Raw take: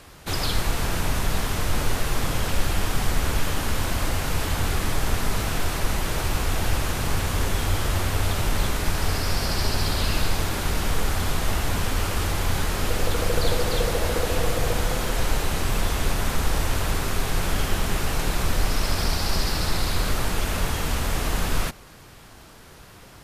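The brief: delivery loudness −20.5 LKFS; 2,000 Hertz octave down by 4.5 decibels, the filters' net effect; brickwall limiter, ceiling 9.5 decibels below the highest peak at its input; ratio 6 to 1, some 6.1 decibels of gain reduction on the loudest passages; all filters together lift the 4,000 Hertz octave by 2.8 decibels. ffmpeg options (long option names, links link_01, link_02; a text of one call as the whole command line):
ffmpeg -i in.wav -af "equalizer=frequency=2000:width_type=o:gain=-7.5,equalizer=frequency=4000:width_type=o:gain=5.5,acompressor=threshold=-22dB:ratio=6,volume=13.5dB,alimiter=limit=-9.5dB:level=0:latency=1" out.wav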